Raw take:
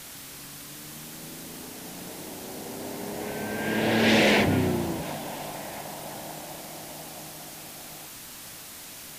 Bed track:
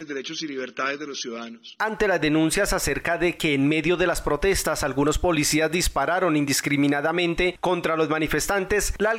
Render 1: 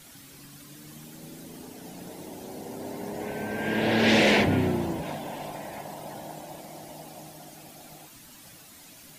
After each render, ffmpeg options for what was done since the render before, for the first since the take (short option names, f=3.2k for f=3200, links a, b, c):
-af "afftdn=nr=10:nf=-43"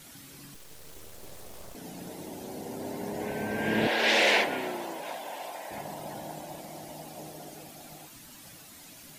-filter_complex "[0:a]asettb=1/sr,asplit=3[a][b][c];[a]atrim=end=0.544[d];[b]atrim=start=0.54:end=1.75,asetpts=PTS-STARTPTS,afade=t=in:d=0.004:c=qsin,afade=t=out:st=1.206:d=0.004:c=qsin,aeval=exprs='abs(val(0))':c=same[e];[c]atrim=start=1.746[f];[d][e]acrossfade=d=0.004:c1=hsin:c2=qsin[g];[g][f]acrossfade=d=0.004:c1=qsin:c2=hsin,asettb=1/sr,asplit=3[h][i][j];[h]atrim=end=3.874[k];[i]atrim=start=3.87:end=5.71,asetpts=PTS-STARTPTS,afade=t=in:d=0.004:c=qsin,afade=t=out:st=1.836:d=0.004:c=qsin,highpass=560[l];[j]atrim=start=5.706[m];[k][l]acrossfade=d=0.004:c1=hsin:c2=qsin[n];[n][m]acrossfade=d=0.004:c1=qsin:c2=hsin,asettb=1/sr,asplit=3[o][p][q];[o]atrim=end=7.184[r];[p]atrim=start=7.18:end=7.64,asetpts=PTS-STARTPTS,afade=t=in:d=0.004:c=qsin,afade=t=out:st=0.456:d=0.004:c=qsin,equalizer=f=450:t=o:w=0.58:g=9.5[s];[q]atrim=start=7.636[t];[r][s]acrossfade=d=0.004:c1=hsin:c2=qsin[u];[u][t]acrossfade=d=0.004:c1=qsin:c2=hsin"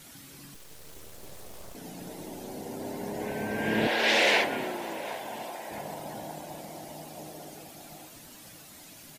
-filter_complex "[0:a]asplit=2[a][b];[b]adelay=787,lowpass=f=1.1k:p=1,volume=-15dB,asplit=2[c][d];[d]adelay=787,lowpass=f=1.1k:p=1,volume=0.52,asplit=2[e][f];[f]adelay=787,lowpass=f=1.1k:p=1,volume=0.52,asplit=2[g][h];[h]adelay=787,lowpass=f=1.1k:p=1,volume=0.52,asplit=2[i][j];[j]adelay=787,lowpass=f=1.1k:p=1,volume=0.52[k];[a][c][e][g][i][k]amix=inputs=6:normalize=0"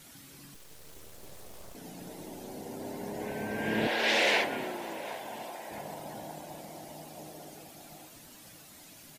-af "volume=-3dB"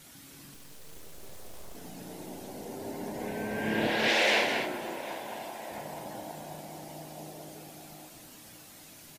-filter_complex "[0:a]asplit=2[a][b];[b]adelay=33,volume=-11dB[c];[a][c]amix=inputs=2:normalize=0,aecho=1:1:214:0.473"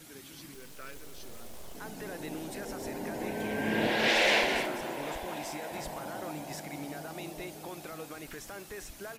-filter_complex "[1:a]volume=-21.5dB[a];[0:a][a]amix=inputs=2:normalize=0"